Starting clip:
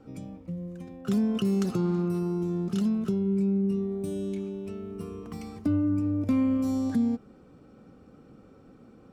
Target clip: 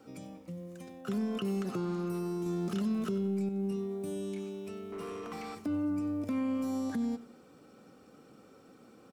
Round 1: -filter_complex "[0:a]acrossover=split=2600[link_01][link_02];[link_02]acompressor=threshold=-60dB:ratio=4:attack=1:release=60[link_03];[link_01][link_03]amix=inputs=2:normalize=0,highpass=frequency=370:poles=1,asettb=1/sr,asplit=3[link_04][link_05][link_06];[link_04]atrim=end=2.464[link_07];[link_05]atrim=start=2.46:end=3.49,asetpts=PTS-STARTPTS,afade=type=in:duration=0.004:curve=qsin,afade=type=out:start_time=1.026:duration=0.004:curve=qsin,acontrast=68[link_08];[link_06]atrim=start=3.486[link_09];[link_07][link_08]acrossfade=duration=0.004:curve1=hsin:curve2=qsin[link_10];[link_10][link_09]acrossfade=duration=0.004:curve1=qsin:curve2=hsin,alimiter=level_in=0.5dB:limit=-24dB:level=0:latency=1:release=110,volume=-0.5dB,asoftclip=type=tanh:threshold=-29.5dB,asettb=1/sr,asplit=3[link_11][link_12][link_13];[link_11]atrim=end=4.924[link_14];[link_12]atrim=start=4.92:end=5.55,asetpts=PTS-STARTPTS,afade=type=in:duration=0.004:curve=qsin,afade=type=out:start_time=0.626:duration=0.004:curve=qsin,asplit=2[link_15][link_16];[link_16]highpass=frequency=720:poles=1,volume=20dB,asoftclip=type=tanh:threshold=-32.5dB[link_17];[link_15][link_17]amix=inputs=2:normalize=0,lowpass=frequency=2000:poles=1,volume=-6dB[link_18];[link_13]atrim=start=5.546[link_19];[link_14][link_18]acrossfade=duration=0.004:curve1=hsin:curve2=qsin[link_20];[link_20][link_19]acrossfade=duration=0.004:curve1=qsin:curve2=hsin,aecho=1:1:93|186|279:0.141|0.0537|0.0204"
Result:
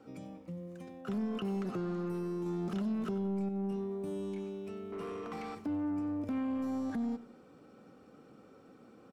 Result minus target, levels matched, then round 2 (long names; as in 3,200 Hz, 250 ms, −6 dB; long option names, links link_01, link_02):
soft clipping: distortion +11 dB; 8,000 Hz band −7.5 dB
-filter_complex "[0:a]acrossover=split=2600[link_01][link_02];[link_02]acompressor=threshold=-60dB:ratio=4:attack=1:release=60[link_03];[link_01][link_03]amix=inputs=2:normalize=0,highpass=frequency=370:poles=1,highshelf=frequency=4100:gain=10.5,asettb=1/sr,asplit=3[link_04][link_05][link_06];[link_04]atrim=end=2.464[link_07];[link_05]atrim=start=2.46:end=3.49,asetpts=PTS-STARTPTS,afade=type=in:duration=0.004:curve=qsin,afade=type=out:start_time=1.026:duration=0.004:curve=qsin,acontrast=68[link_08];[link_06]atrim=start=3.486[link_09];[link_07][link_08]acrossfade=duration=0.004:curve1=hsin:curve2=qsin[link_10];[link_10][link_09]acrossfade=duration=0.004:curve1=qsin:curve2=hsin,alimiter=level_in=0.5dB:limit=-24dB:level=0:latency=1:release=110,volume=-0.5dB,asoftclip=type=tanh:threshold=-22.5dB,asettb=1/sr,asplit=3[link_11][link_12][link_13];[link_11]atrim=end=4.924[link_14];[link_12]atrim=start=4.92:end=5.55,asetpts=PTS-STARTPTS,afade=type=in:duration=0.004:curve=qsin,afade=type=out:start_time=0.626:duration=0.004:curve=qsin,asplit=2[link_15][link_16];[link_16]highpass=frequency=720:poles=1,volume=20dB,asoftclip=type=tanh:threshold=-32.5dB[link_17];[link_15][link_17]amix=inputs=2:normalize=0,lowpass=frequency=2000:poles=1,volume=-6dB[link_18];[link_13]atrim=start=5.546[link_19];[link_14][link_18]acrossfade=duration=0.004:curve1=hsin:curve2=qsin[link_20];[link_20][link_19]acrossfade=duration=0.004:curve1=qsin:curve2=hsin,aecho=1:1:93|186|279:0.141|0.0537|0.0204"